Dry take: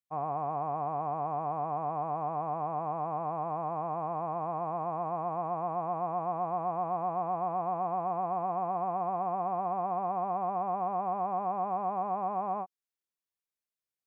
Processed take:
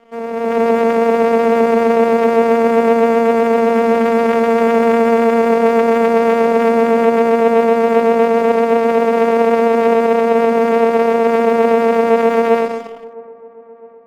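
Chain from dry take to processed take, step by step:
on a send at −4 dB: convolution reverb RT60 1.4 s, pre-delay 6 ms
on the sum: channel vocoder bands 4, saw 230 Hz
dynamic equaliser 490 Hz, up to +4 dB, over −46 dBFS, Q 2.8
in parallel at +1 dB: brickwall limiter −29 dBFS, peak gain reduction 13.5 dB
on the sum: echo ahead of the sound 152 ms −17 dB
pitch vibrato 7.9 Hz 15 cents
dead-zone distortion −45.5 dBFS
automatic gain control gain up to 14 dB
delay with a low-pass on its return 659 ms, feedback 52%, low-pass 1,100 Hz, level −21.5 dB
level +1 dB

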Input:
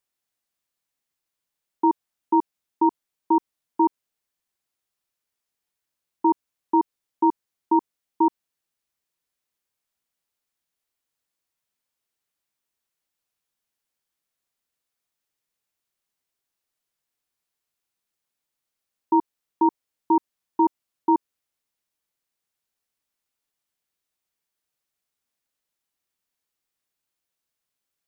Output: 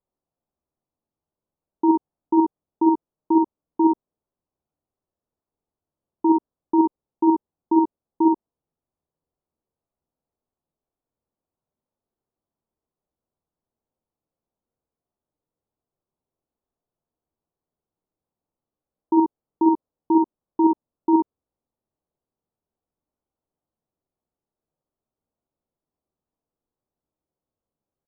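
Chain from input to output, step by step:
in parallel at +0.5 dB: brickwall limiter −20 dBFS, peak gain reduction 9.5 dB
on the sum: Gaussian smoothing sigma 9.9 samples
ambience of single reflections 49 ms −4 dB, 62 ms −4 dB

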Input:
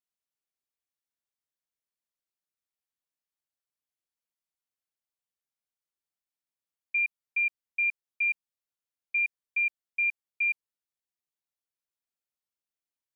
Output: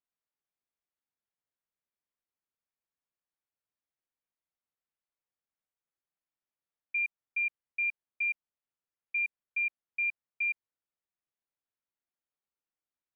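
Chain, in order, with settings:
low-pass filter 2,200 Hz 12 dB per octave

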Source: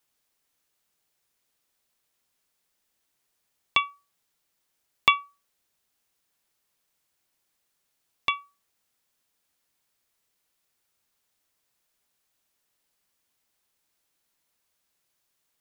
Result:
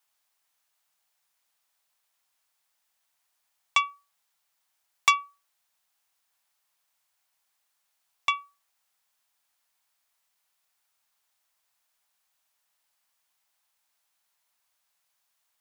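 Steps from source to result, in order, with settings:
low shelf with overshoot 560 Hz −10 dB, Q 1.5
saturating transformer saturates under 3,400 Hz

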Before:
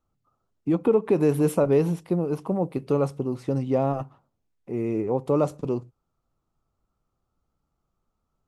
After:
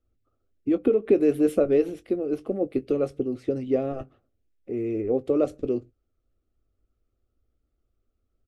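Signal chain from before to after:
high-shelf EQ 10,000 Hz −2.5 dB
harmonic and percussive parts rebalanced harmonic −6 dB
bass and treble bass +6 dB, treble −10 dB
phaser with its sweep stopped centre 390 Hz, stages 4
double-tracking delay 20 ms −13 dB
level +3.5 dB

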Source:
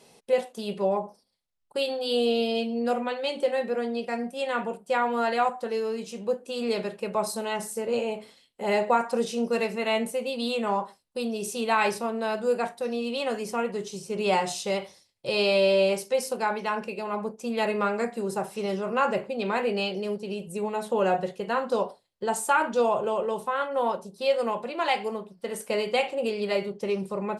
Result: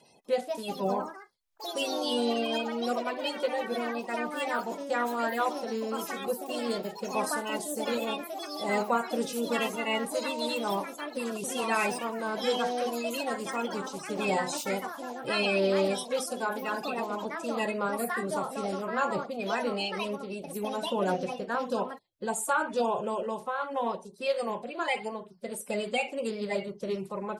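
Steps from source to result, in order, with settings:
spectral magnitudes quantised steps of 30 dB
dynamic equaliser 9,100 Hz, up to +4 dB, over −51 dBFS, Q 0.71
delay with pitch and tempo change per echo 246 ms, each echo +4 semitones, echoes 3, each echo −6 dB
level −4 dB

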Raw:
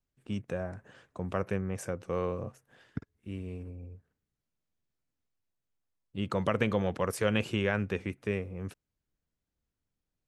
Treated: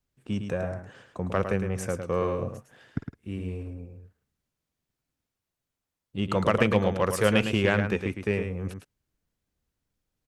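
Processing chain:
single-tap delay 108 ms −7 dB
harmonic generator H 7 −34 dB, 8 −33 dB, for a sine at −12 dBFS
level +6 dB

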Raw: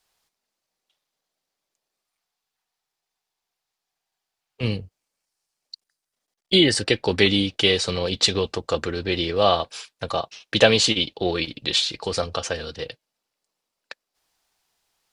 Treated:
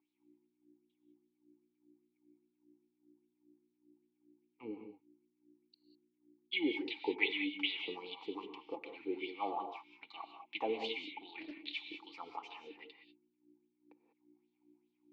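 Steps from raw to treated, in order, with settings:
hum with harmonics 60 Hz, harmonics 6, −49 dBFS −4 dB per octave
LFO wah 2.5 Hz 440–3,900 Hz, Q 4.6
formant filter u
reverb whose tail is shaped and stops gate 220 ms rising, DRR 6 dB
0:11.27–0:11.85: highs frequency-modulated by the lows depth 0.21 ms
level +7.5 dB

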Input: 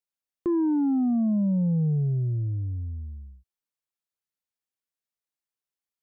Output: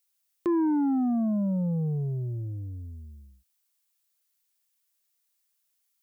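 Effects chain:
spectral tilt +3.5 dB per octave
level +5 dB

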